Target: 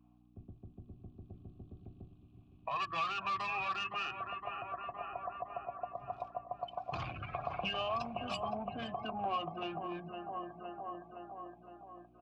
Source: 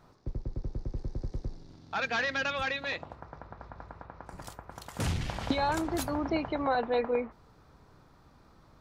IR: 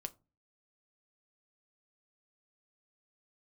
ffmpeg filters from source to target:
-filter_complex "[0:a]adynamicequalizer=threshold=0.00562:dfrequency=470:dqfactor=2.1:tfrequency=470:tqfactor=2.1:attack=5:release=100:ratio=0.375:range=3:mode=boostabove:tftype=bell,asetrate=31796,aresample=44100,afftdn=noise_reduction=27:noise_floor=-38,equalizer=frequency=125:width_type=o:width=1:gain=11,equalizer=frequency=250:width_type=o:width=1:gain=-4,equalizer=frequency=500:width_type=o:width=1:gain=-10,equalizer=frequency=1000:width_type=o:width=1:gain=7,equalizer=frequency=2000:width_type=o:width=1:gain=6,equalizer=frequency=4000:width_type=o:width=1:gain=5,asplit=2[link_01][link_02];[link_02]adelay=514,lowpass=frequency=3000:poles=1,volume=-12.5dB,asplit=2[link_03][link_04];[link_04]adelay=514,lowpass=frequency=3000:poles=1,volume=0.54,asplit=2[link_05][link_06];[link_06]adelay=514,lowpass=frequency=3000:poles=1,volume=0.54,asplit=2[link_07][link_08];[link_08]adelay=514,lowpass=frequency=3000:poles=1,volume=0.54,asplit=2[link_09][link_10];[link_10]adelay=514,lowpass=frequency=3000:poles=1,volume=0.54,asplit=2[link_11][link_12];[link_12]adelay=514,lowpass=frequency=3000:poles=1,volume=0.54[link_13];[link_03][link_05][link_07][link_09][link_11][link_13]amix=inputs=6:normalize=0[link_14];[link_01][link_14]amix=inputs=2:normalize=0,asoftclip=type=tanh:threshold=-23.5dB,bandreject=frequency=60:width_type=h:width=6,bandreject=frequency=120:width_type=h:width=6,bandreject=frequency=180:width_type=h:width=6,bandreject=frequency=240:width_type=h:width=6,bandreject=frequency=300:width_type=h:width=6,bandreject=frequency=360:width_type=h:width=6,bandreject=frequency=420:width_type=h:width=6,acrossover=split=210|3000[link_15][link_16][link_17];[link_16]acompressor=threshold=-47dB:ratio=4[link_18];[link_15][link_18][link_17]amix=inputs=3:normalize=0,aeval=exprs='val(0)+0.00282*(sin(2*PI*60*n/s)+sin(2*PI*2*60*n/s)/2+sin(2*PI*3*60*n/s)/3+sin(2*PI*4*60*n/s)/4+sin(2*PI*5*60*n/s)/5)':channel_layout=same,asplit=3[link_19][link_20][link_21];[link_19]bandpass=frequency=730:width_type=q:width=8,volume=0dB[link_22];[link_20]bandpass=frequency=1090:width_type=q:width=8,volume=-6dB[link_23];[link_21]bandpass=frequency=2440:width_type=q:width=8,volume=-9dB[link_24];[link_22][link_23][link_24]amix=inputs=3:normalize=0,volume=17.5dB"

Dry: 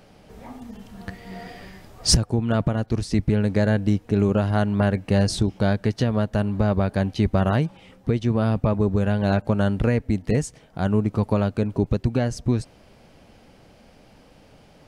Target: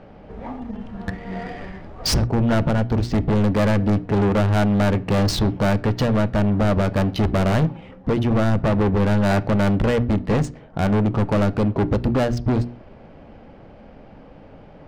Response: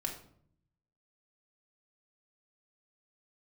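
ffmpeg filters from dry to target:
-filter_complex "[0:a]bandreject=frequency=60:width_type=h:width=6,bandreject=frequency=120:width_type=h:width=6,bandreject=frequency=180:width_type=h:width=6,bandreject=frequency=240:width_type=h:width=6,bandreject=frequency=300:width_type=h:width=6,bandreject=frequency=360:width_type=h:width=6,asoftclip=type=hard:threshold=-24dB,adynamicsmooth=sensitivity=6:basefreq=1800,asplit=2[link_01][link_02];[1:a]atrim=start_sample=2205,atrim=end_sample=6174,lowpass=4600[link_03];[link_02][link_03]afir=irnorm=-1:irlink=0,volume=-13dB[link_04];[link_01][link_04]amix=inputs=2:normalize=0,volume=7dB"

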